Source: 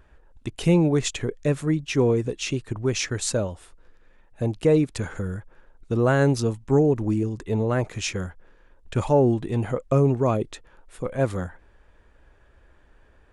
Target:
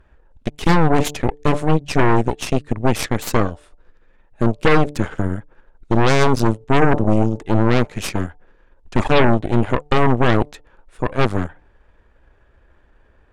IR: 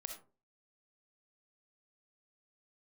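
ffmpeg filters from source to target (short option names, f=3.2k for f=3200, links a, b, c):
-af "aemphasis=mode=reproduction:type=cd,bandreject=f=147.1:t=h:w=4,bandreject=f=294.2:t=h:w=4,bandreject=f=441.3:t=h:w=4,bandreject=f=588.4:t=h:w=4,bandreject=f=735.5:t=h:w=4,bandreject=f=882.6:t=h:w=4,aeval=exprs='0.422*(cos(1*acos(clip(val(0)/0.422,-1,1)))-cos(1*PI/2))+0.168*(cos(8*acos(clip(val(0)/0.422,-1,1)))-cos(8*PI/2))':c=same,volume=1.5dB"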